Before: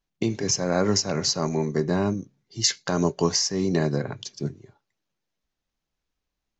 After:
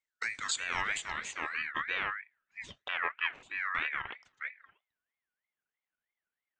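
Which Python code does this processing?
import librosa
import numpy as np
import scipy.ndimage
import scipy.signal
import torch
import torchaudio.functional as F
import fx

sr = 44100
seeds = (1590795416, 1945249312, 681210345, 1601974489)

y = fx.median_filter(x, sr, points=25, at=(2.88, 3.43))
y = fx.filter_sweep_lowpass(y, sr, from_hz=5600.0, to_hz=1300.0, start_s=0.37, end_s=2.39, q=1.9)
y = fx.ring_lfo(y, sr, carrier_hz=1800.0, swing_pct=20, hz=3.1)
y = y * librosa.db_to_amplitude(-8.5)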